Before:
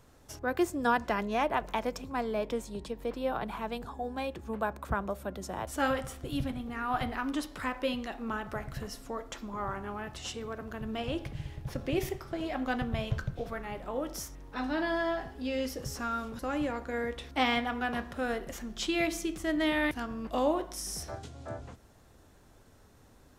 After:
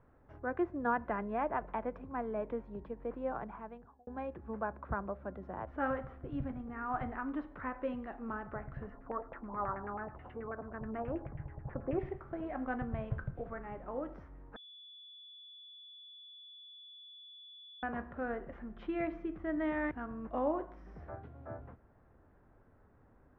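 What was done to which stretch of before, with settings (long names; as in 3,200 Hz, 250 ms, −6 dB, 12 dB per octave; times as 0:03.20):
0:03.29–0:04.07: fade out
0:08.90–0:11.99: auto-filter low-pass saw down 9.3 Hz 660–2,400 Hz
0:14.56–0:17.83: beep over 3,440 Hz −23 dBFS
whole clip: low-pass filter 1,800 Hz 24 dB per octave; level −5 dB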